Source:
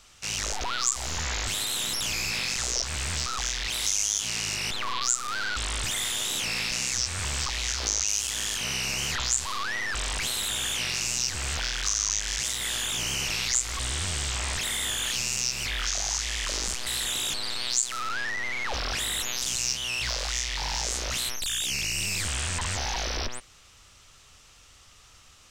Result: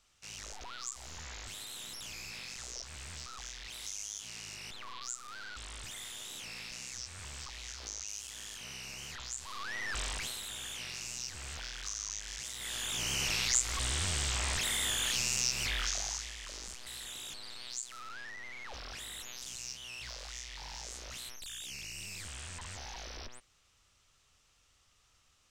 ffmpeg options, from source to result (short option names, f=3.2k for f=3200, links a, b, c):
-af "volume=3.5dB,afade=t=in:st=9.37:d=0.62:silence=0.334965,afade=t=out:st=9.99:d=0.42:silence=0.446684,afade=t=in:st=12.52:d=0.75:silence=0.334965,afade=t=out:st=15.7:d=0.65:silence=0.266073"